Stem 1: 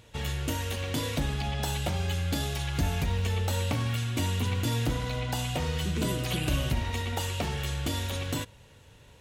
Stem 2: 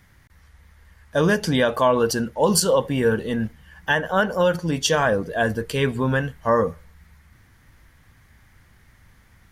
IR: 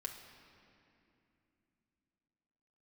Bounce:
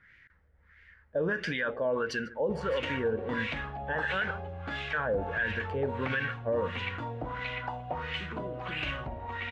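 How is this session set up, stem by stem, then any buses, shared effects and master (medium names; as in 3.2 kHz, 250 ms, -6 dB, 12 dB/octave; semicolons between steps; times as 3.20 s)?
-5.5 dB, 2.35 s, no send, no echo send, treble shelf 8.8 kHz -10 dB
-7.5 dB, 0.00 s, muted 4.31–4.93 s, no send, echo send -18.5 dB, high-order bell 880 Hz -12 dB 1.1 oct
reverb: none
echo: delay 149 ms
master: LFO low-pass sine 1.5 Hz 630–2400 Hz; tilt shelf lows -7 dB, about 660 Hz; peak limiter -21.5 dBFS, peak gain reduction 10.5 dB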